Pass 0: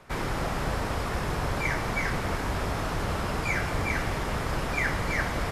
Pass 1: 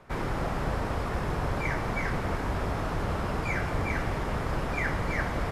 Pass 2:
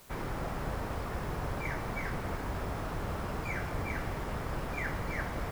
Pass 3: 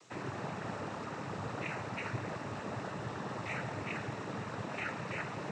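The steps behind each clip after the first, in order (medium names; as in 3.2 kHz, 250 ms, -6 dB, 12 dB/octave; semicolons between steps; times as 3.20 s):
treble shelf 2.4 kHz -8.5 dB
added noise white -52 dBFS; trim -6 dB
noise-vocoded speech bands 12; trim -1.5 dB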